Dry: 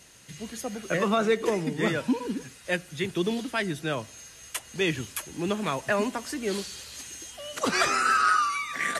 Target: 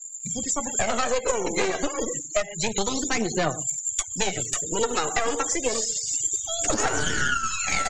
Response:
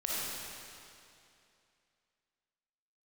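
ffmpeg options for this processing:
-filter_complex "[0:a]highshelf=f=3.8k:g=-3,asplit=2[a][b];[b]adelay=136,lowpass=f=2.2k:p=1,volume=-16dB,asplit=2[c][d];[d]adelay=136,lowpass=f=2.2k:p=1,volume=0.27,asplit=2[e][f];[f]adelay=136,lowpass=f=2.2k:p=1,volume=0.27[g];[a][c][e][g]amix=inputs=4:normalize=0,flanger=delay=7.3:depth=4.9:regen=30:speed=0.74:shape=sinusoidal,asplit=2[h][i];[1:a]atrim=start_sample=2205,afade=t=out:st=0.15:d=0.01,atrim=end_sample=7056[j];[i][j]afir=irnorm=-1:irlink=0,volume=-13dB[k];[h][k]amix=inputs=2:normalize=0,aeval=exprs='0.355*(cos(1*acos(clip(val(0)/0.355,-1,1)))-cos(1*PI/2))+0.1*(cos(4*acos(clip(val(0)/0.355,-1,1)))-cos(4*PI/2))+0.00501*(cos(5*acos(clip(val(0)/0.355,-1,1)))-cos(5*PI/2))+0.0224*(cos(8*acos(clip(val(0)/0.355,-1,1)))-cos(8*PI/2))':c=same,lowpass=f=6.1k:t=q:w=12,afftfilt=real='re*gte(hypot(re,im),0.0112)':imag='im*gte(hypot(re,im),0.0112)':win_size=1024:overlap=0.75,asetrate=50274,aresample=44100,acrossover=split=410|1300[l][m][n];[l]acompressor=threshold=-35dB:ratio=4[o];[m]acompressor=threshold=-29dB:ratio=4[p];[n]acompressor=threshold=-33dB:ratio=4[q];[o][p][q]amix=inputs=3:normalize=0,aphaser=in_gain=1:out_gain=1:delay=2.6:decay=0.52:speed=0.29:type=triangular,acompressor=threshold=-28dB:ratio=6,volume=8dB"

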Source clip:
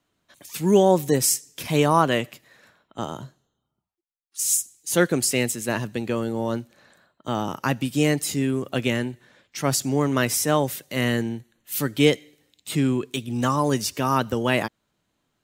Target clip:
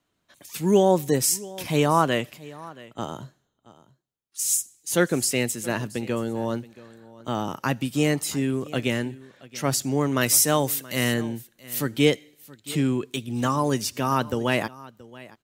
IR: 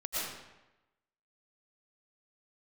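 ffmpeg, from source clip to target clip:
-filter_complex "[0:a]asettb=1/sr,asplit=3[a][b][c];[a]atrim=end=10.214[d];[b]atrim=start=10.21:end=11.14,asetpts=PTS-STARTPTS,afade=t=in:d=0.004:c=qsin,afade=t=out:st=0.926:d=0.004:c=qsin,highshelf=f=4.2k:g=9.5[e];[c]atrim=start=11.136[f];[d][e]acrossfade=d=0.004:c1=hsin:c2=qsin[g];[g][f]acrossfade=d=0.004:c1=qsin:c2=hsin,asplit=2[h][i];[i]aecho=0:1:676:0.1[j];[h][j]amix=inputs=2:normalize=0,volume=-1.5dB"

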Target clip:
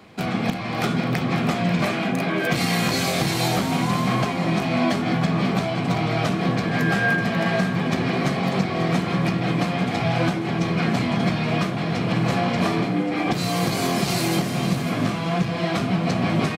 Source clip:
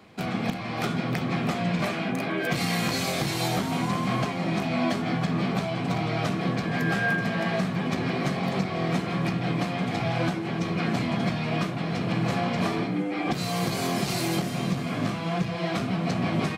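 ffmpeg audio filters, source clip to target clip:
-af "aecho=1:1:540:0.251,volume=4.5dB"

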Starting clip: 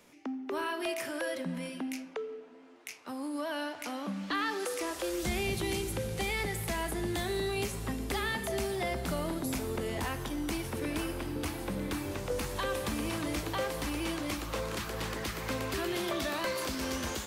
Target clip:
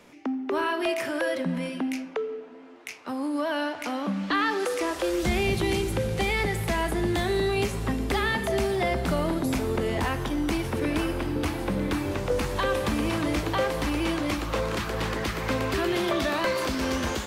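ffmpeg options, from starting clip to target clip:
-af "highshelf=f=5.5k:g=-10,volume=8dB"

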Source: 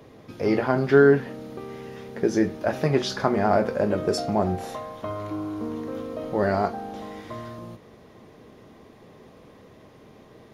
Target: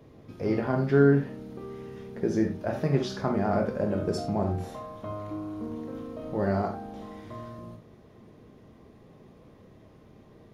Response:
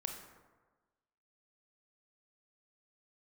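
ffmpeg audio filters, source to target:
-filter_complex "[0:a]lowshelf=f=340:g=9[a];[1:a]atrim=start_sample=2205,afade=t=out:st=0.14:d=0.01,atrim=end_sample=6615[b];[a][b]afir=irnorm=-1:irlink=0,volume=-7dB"

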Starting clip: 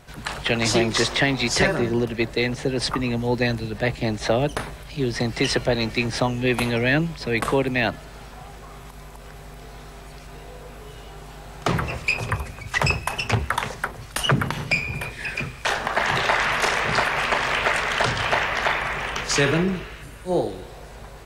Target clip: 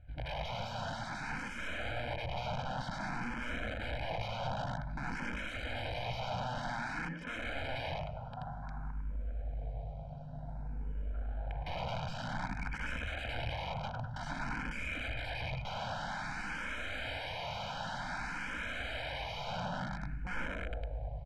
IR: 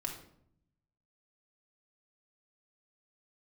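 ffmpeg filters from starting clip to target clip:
-filter_complex "[0:a]aeval=exprs='0.266*(abs(mod(val(0)/0.266+3,4)-2)-1)':c=same,alimiter=limit=-20dB:level=0:latency=1:release=31,afwtdn=0.0126,aeval=exprs='(tanh(28.2*val(0)+0.5)-tanh(0.5))/28.2':c=same,asettb=1/sr,asplit=3[a][b][c];[a]atrim=end=6.684[d];[b]atrim=start=6.68:end=7.36,asetpts=PTS-STARTPTS,afade=t=in:d=0.004:c=qsin,afade=t=out:st=0.676:d=0.004:c=qsin,highpass=f=190:w=0.5412,highpass=f=190:w=1.3066[e];[c]atrim=start=7.356[f];[d][e]acrossfade=d=0.004:c1=hsin:c2=qsin[g];[g][f]acrossfade=d=0.004:c1=qsin:c2=hsin,aecho=1:1:101|202|303|404|505|606:0.501|0.241|0.115|0.0554|0.0266|0.0128,aeval=exprs='(mod(28.2*val(0)+1,2)-1)/28.2':c=same,lowpass=2.5k,aecho=1:1:1.3:0.91,asplit=2[h][i];[i]afreqshift=0.53[j];[h][j]amix=inputs=2:normalize=1,volume=-1.5dB"

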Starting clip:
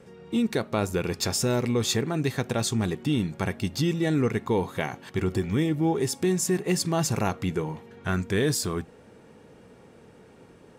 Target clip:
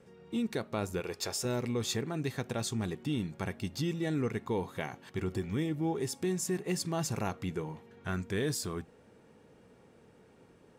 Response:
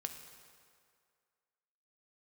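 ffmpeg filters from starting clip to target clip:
-filter_complex "[0:a]asettb=1/sr,asplit=3[a][b][c];[a]atrim=end=1.004[d];[b]atrim=start=1:end=1.45,asetpts=PTS-STARTPTS,afade=t=in:d=0.004:c=qsin,afade=t=out:st=0.446:d=0.004:c=qsin,lowshelf=f=320:t=q:w=1.5:g=-7[e];[c]atrim=start=1.446[f];[d][e]acrossfade=d=0.004:c1=hsin:c2=qsin[g];[g][f]acrossfade=d=0.004:c1=qsin:c2=hsin,volume=-8dB"

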